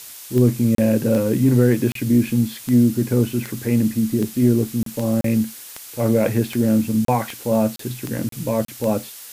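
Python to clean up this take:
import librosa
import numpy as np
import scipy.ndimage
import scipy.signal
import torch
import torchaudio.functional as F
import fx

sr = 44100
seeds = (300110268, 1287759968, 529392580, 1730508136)

y = fx.fix_declick_ar(x, sr, threshold=10.0)
y = fx.fix_interpolate(y, sr, at_s=(0.75, 1.92, 4.83, 5.21, 7.05, 7.76, 8.29, 8.65), length_ms=33.0)
y = fx.noise_reduce(y, sr, print_start_s=5.47, print_end_s=5.97, reduce_db=26.0)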